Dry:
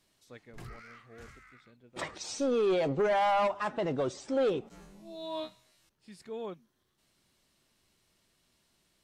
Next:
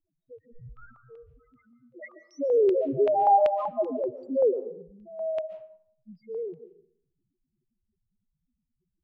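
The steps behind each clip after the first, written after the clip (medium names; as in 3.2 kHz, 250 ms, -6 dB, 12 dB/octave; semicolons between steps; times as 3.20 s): loudest bins only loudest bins 1; LFO low-pass square 2.6 Hz 740–2800 Hz; algorithmic reverb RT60 0.61 s, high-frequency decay 0.6×, pre-delay 100 ms, DRR 12.5 dB; trim +8.5 dB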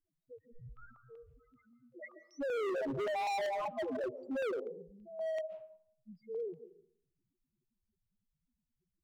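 hard clipper -28 dBFS, distortion -5 dB; trim -5.5 dB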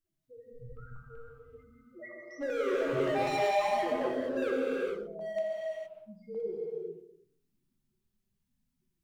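gated-style reverb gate 490 ms flat, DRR -4.5 dB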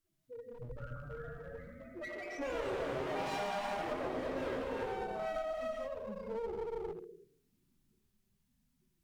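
compression 6:1, threshold -37 dBFS, peak gain reduction 13 dB; one-sided clip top -47 dBFS; ever faster or slower copies 510 ms, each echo +3 st, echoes 2, each echo -6 dB; trim +4 dB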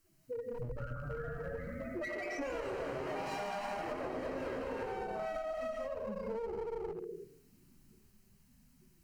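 band-stop 3.5 kHz, Q 5; compression 5:1, threshold -49 dBFS, peak gain reduction 14.5 dB; trim +11.5 dB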